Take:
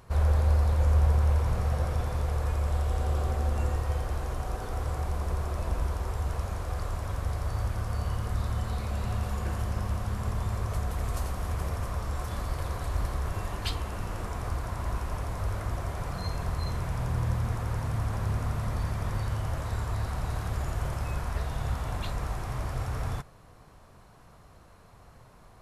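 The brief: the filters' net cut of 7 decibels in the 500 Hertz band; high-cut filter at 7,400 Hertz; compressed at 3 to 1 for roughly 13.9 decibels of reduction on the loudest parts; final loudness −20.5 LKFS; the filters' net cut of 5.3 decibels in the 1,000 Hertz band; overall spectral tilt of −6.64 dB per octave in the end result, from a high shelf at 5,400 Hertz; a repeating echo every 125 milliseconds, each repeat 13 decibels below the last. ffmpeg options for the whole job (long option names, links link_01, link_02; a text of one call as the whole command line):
ffmpeg -i in.wav -af "lowpass=7400,equalizer=frequency=500:width_type=o:gain=-7.5,equalizer=frequency=1000:width_type=o:gain=-4,highshelf=frequency=5400:gain=-8,acompressor=threshold=-39dB:ratio=3,aecho=1:1:125|250|375:0.224|0.0493|0.0108,volume=21dB" out.wav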